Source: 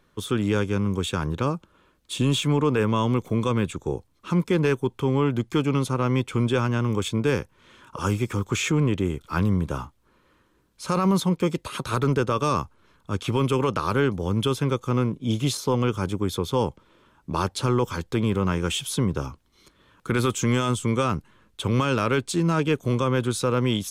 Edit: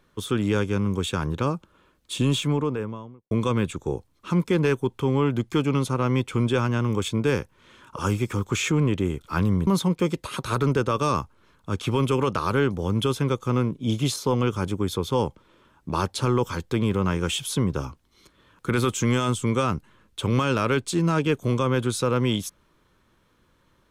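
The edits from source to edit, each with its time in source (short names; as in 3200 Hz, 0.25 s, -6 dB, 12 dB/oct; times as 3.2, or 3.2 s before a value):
2.23–3.31 studio fade out
9.67–11.08 cut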